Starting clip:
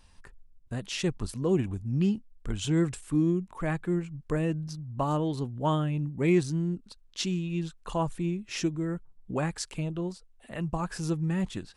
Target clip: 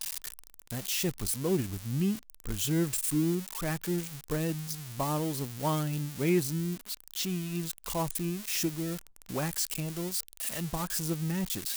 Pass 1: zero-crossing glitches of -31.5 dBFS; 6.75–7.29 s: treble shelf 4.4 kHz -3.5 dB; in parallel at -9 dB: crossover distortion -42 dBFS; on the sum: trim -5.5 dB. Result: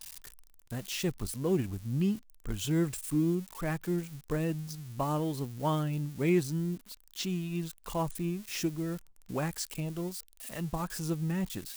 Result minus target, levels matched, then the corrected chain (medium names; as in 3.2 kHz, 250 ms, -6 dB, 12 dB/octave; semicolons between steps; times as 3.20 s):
zero-crossing glitches: distortion -9 dB
zero-crossing glitches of -22 dBFS; 6.75–7.29 s: treble shelf 4.4 kHz -3.5 dB; in parallel at -9 dB: crossover distortion -42 dBFS; on the sum: trim -5.5 dB